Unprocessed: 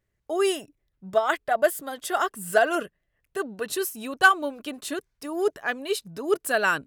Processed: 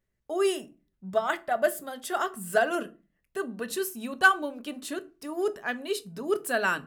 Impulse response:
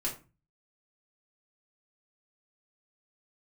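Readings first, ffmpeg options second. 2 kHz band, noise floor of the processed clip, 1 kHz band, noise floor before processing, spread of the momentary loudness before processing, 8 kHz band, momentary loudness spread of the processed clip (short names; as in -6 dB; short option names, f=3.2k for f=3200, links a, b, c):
-3.0 dB, -78 dBFS, -4.0 dB, -77 dBFS, 14 LU, -4.0 dB, 14 LU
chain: -filter_complex "[0:a]asplit=2[a][b];[b]equalizer=f=200:t=o:w=0.79:g=13[c];[1:a]atrim=start_sample=2205[d];[c][d]afir=irnorm=-1:irlink=0,volume=-12.5dB[e];[a][e]amix=inputs=2:normalize=0,volume=-5.5dB"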